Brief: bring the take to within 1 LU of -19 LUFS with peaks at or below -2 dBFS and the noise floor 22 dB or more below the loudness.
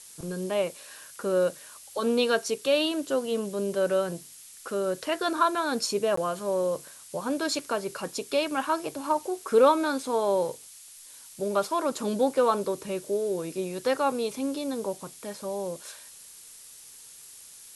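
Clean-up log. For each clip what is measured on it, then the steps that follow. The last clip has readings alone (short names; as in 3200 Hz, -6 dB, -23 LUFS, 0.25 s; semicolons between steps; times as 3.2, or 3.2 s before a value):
dropouts 1; longest dropout 14 ms; noise floor -49 dBFS; noise floor target -50 dBFS; loudness -28.0 LUFS; peak -9.0 dBFS; loudness target -19.0 LUFS
-> interpolate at 6.16, 14 ms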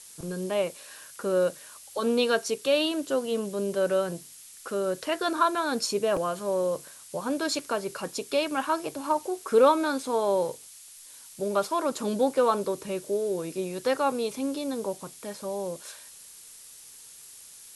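dropouts 0; noise floor -49 dBFS; noise floor target -50 dBFS
-> denoiser 6 dB, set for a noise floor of -49 dBFS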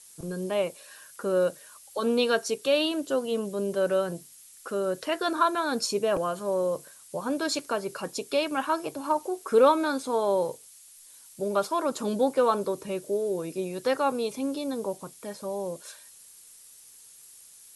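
noise floor -52 dBFS; loudness -28.0 LUFS; peak -9.5 dBFS; loudness target -19.0 LUFS
-> gain +9 dB; limiter -2 dBFS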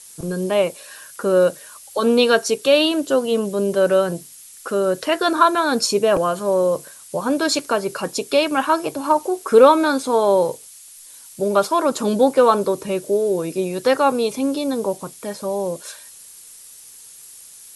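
loudness -19.0 LUFS; peak -2.0 dBFS; noise floor -43 dBFS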